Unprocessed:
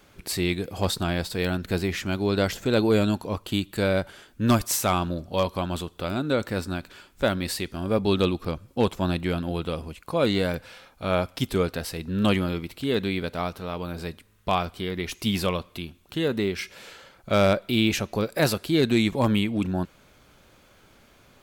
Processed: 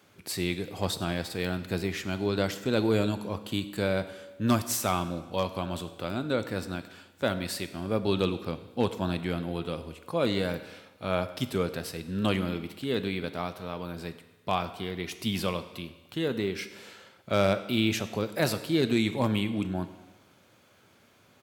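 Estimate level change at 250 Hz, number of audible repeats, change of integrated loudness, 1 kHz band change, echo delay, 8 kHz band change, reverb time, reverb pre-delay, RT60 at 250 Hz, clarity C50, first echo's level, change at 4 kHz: −4.5 dB, 1, −4.5 dB, −4.0 dB, 100 ms, −4.0 dB, 1.2 s, 7 ms, 1.2 s, 13.0 dB, −21.5 dB, −4.0 dB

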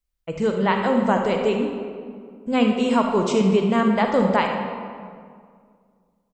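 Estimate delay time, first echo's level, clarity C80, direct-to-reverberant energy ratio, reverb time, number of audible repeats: 73 ms, −12.0 dB, 5.0 dB, 2.5 dB, 2.1 s, 1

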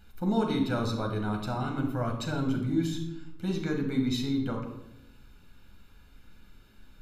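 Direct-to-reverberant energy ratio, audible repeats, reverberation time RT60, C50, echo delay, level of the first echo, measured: 1.5 dB, no echo audible, 0.85 s, 6.5 dB, no echo audible, no echo audible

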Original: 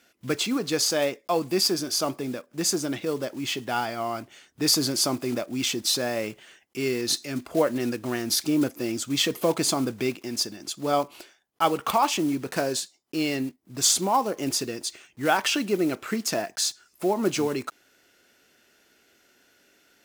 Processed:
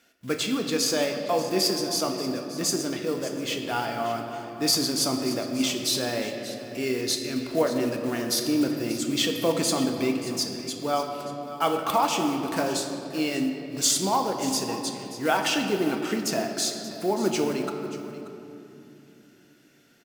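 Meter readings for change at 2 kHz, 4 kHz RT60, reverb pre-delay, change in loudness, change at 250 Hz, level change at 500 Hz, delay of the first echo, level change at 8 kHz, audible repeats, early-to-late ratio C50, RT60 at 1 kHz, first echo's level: −0.5 dB, 1.8 s, 4 ms, −0.5 dB, +1.0 dB, +0.5 dB, 583 ms, −1.0 dB, 1, 5.0 dB, 2.6 s, −15.0 dB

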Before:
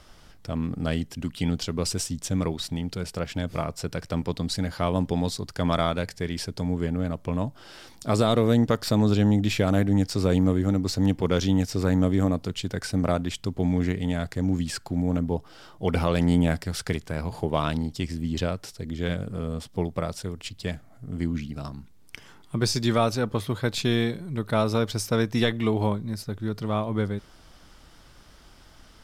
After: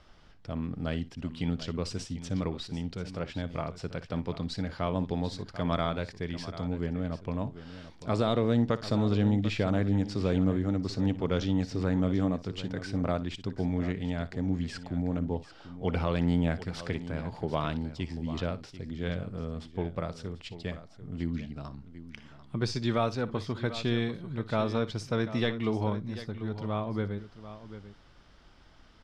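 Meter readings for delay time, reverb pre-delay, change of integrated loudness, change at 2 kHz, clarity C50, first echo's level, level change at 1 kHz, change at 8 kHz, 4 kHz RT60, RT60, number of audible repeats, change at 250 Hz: 59 ms, no reverb audible, −5.5 dB, −5.5 dB, no reverb audible, −17.0 dB, −5.5 dB, below −10 dB, no reverb audible, no reverb audible, 2, −5.5 dB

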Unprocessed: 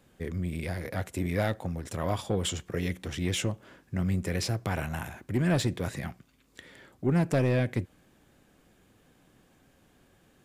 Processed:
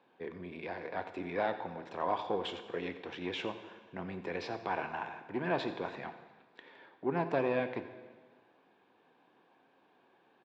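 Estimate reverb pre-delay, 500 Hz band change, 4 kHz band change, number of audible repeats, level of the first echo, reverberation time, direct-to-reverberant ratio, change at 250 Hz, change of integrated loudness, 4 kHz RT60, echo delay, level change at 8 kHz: 8 ms, −2.5 dB, −7.5 dB, 1, −16.0 dB, 1.5 s, 9.0 dB, −9.0 dB, −6.5 dB, 1.4 s, 89 ms, below −25 dB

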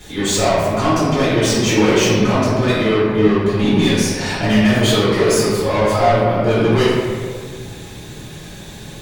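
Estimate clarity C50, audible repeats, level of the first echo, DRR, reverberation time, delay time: −2.5 dB, no echo audible, no echo audible, −13.5 dB, 1.8 s, no echo audible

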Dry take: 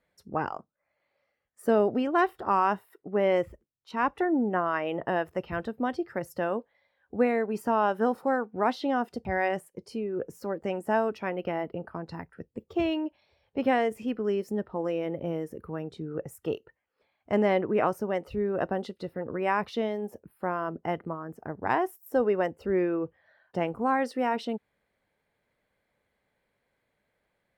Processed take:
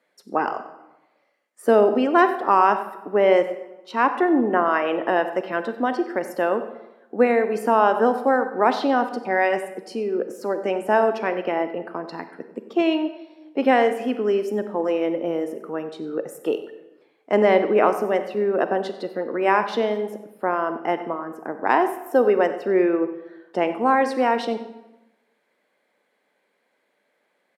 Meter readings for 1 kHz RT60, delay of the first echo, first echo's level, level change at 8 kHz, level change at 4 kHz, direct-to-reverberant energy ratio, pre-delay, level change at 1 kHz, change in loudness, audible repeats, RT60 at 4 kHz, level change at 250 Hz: 1.0 s, 94 ms, −16.5 dB, can't be measured, +7.5 dB, 9.0 dB, 34 ms, +8.0 dB, +7.5 dB, 1, 0.70 s, +6.0 dB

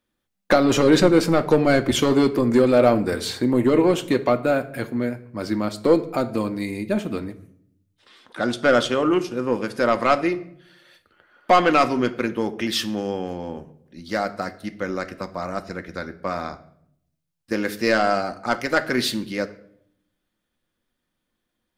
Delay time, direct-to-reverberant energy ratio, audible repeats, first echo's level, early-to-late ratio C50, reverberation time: no echo audible, 8.0 dB, no echo audible, no echo audible, 16.0 dB, 0.70 s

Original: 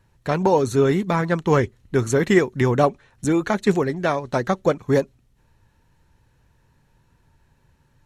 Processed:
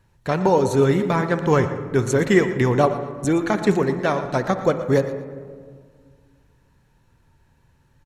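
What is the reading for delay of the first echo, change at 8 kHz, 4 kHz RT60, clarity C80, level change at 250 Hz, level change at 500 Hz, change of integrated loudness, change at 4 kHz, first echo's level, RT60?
118 ms, 0.0 dB, 0.90 s, 9.5 dB, +0.5 dB, +0.5 dB, +0.5 dB, +0.5 dB, −14.5 dB, 1.9 s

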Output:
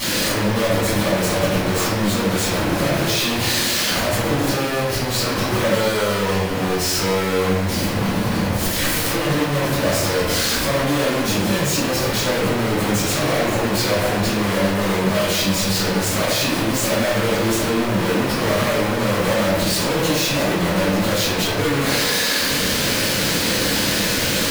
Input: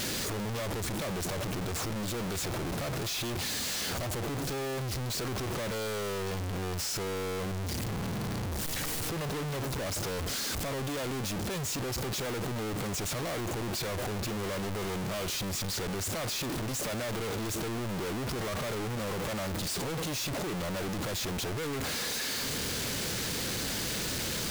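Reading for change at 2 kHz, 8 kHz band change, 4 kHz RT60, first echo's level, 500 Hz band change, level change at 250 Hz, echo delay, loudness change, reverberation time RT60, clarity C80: +16.0 dB, +11.5 dB, 0.75 s, no echo audible, +15.5 dB, +15.5 dB, no echo audible, +14.0 dB, 1.1 s, 3.0 dB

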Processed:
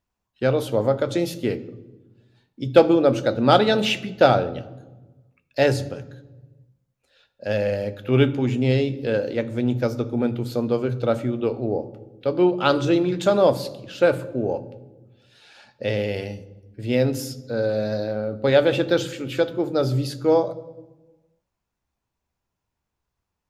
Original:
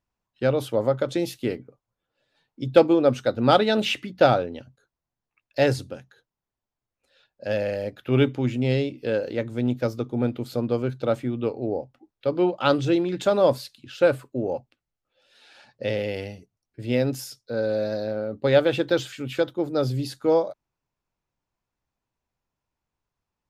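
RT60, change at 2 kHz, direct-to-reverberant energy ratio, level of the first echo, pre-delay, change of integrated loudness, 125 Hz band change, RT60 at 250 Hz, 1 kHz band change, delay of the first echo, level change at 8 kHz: 1.2 s, +2.5 dB, 11.0 dB, no echo audible, 3 ms, +2.0 dB, +3.0 dB, 1.7 s, +2.5 dB, no echo audible, can't be measured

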